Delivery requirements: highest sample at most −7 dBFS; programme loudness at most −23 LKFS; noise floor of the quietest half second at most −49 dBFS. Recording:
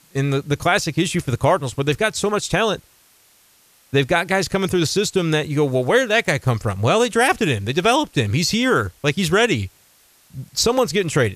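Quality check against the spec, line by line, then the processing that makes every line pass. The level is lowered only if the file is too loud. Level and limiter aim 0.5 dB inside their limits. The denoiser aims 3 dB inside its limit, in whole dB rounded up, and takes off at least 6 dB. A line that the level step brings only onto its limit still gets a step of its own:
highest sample −4.0 dBFS: out of spec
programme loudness −19.0 LKFS: out of spec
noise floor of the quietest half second −55 dBFS: in spec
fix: level −4.5 dB

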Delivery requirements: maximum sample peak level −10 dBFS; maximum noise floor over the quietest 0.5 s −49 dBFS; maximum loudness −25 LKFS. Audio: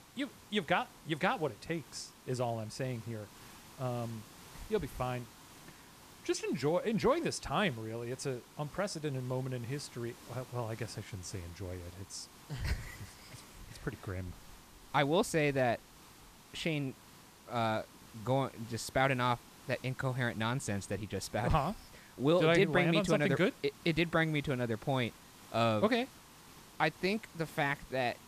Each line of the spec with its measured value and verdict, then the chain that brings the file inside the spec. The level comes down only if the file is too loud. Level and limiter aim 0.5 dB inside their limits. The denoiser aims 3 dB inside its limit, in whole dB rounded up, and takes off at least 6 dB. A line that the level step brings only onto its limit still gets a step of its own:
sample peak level −15.5 dBFS: in spec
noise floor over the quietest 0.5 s −57 dBFS: in spec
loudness −34.5 LKFS: in spec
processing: no processing needed

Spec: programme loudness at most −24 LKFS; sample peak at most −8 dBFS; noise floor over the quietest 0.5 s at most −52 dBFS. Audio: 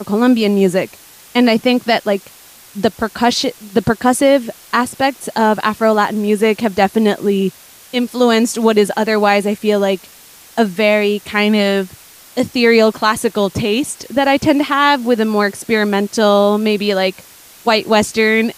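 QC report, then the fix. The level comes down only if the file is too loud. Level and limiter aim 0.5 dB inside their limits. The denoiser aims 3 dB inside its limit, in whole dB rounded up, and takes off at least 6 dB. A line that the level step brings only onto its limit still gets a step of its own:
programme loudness −15.0 LKFS: out of spec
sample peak −1.5 dBFS: out of spec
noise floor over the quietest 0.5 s −42 dBFS: out of spec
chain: broadband denoise 6 dB, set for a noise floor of −42 dBFS
level −9.5 dB

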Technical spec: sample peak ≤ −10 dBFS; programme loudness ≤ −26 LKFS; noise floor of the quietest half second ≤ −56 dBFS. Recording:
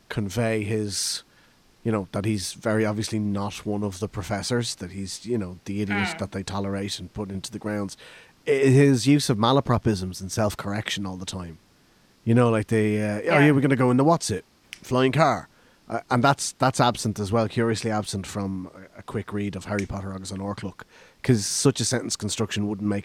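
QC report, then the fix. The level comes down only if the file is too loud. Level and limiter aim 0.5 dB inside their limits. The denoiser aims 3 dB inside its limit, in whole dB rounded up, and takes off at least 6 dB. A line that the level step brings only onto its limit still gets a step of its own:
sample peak −5.0 dBFS: out of spec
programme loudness −24.5 LKFS: out of spec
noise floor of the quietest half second −59 dBFS: in spec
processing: level −2 dB
brickwall limiter −10.5 dBFS

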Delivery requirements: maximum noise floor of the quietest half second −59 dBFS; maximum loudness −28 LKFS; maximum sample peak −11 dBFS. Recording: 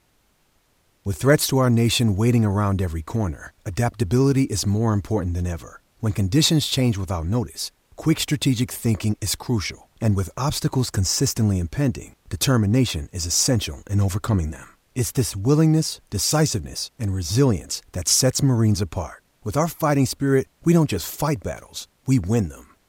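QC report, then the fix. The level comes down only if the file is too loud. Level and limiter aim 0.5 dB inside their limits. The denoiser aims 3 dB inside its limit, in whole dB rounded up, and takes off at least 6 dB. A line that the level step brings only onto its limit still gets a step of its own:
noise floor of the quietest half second −63 dBFS: in spec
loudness −21.5 LKFS: out of spec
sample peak −5.5 dBFS: out of spec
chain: level −7 dB

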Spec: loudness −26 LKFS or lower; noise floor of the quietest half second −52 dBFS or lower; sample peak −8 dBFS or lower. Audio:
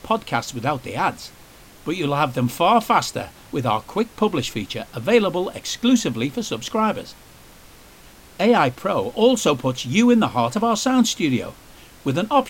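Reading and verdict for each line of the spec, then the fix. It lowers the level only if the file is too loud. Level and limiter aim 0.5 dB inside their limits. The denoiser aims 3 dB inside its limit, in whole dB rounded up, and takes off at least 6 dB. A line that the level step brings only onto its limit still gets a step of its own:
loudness −21.0 LKFS: out of spec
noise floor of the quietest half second −46 dBFS: out of spec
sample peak −5.0 dBFS: out of spec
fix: broadband denoise 6 dB, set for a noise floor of −46 dBFS
level −5.5 dB

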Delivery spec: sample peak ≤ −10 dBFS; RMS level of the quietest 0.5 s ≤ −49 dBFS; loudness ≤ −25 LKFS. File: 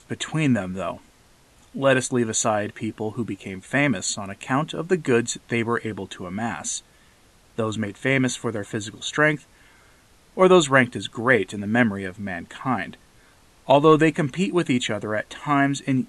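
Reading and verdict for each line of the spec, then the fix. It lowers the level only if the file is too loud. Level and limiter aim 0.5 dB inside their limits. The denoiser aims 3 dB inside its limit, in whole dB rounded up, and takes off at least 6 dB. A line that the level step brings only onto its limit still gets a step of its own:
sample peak −3.0 dBFS: out of spec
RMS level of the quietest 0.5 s −55 dBFS: in spec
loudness −22.5 LKFS: out of spec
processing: level −3 dB
brickwall limiter −10.5 dBFS

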